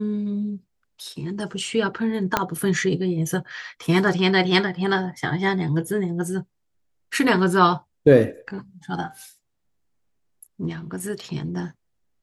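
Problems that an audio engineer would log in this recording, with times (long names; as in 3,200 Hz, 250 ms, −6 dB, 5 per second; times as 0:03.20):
0:02.37: click −4 dBFS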